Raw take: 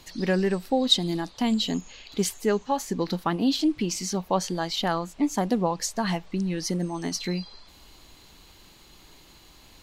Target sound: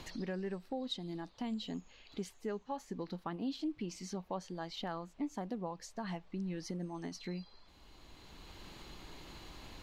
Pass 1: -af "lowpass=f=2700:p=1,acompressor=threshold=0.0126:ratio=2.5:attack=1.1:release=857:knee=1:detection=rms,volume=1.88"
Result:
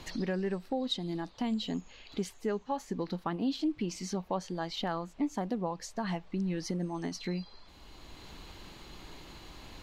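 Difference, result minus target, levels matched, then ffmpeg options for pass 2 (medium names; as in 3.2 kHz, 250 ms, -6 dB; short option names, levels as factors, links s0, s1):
compression: peak gain reduction -6.5 dB
-af "lowpass=f=2700:p=1,acompressor=threshold=0.00355:ratio=2.5:attack=1.1:release=857:knee=1:detection=rms,volume=1.88"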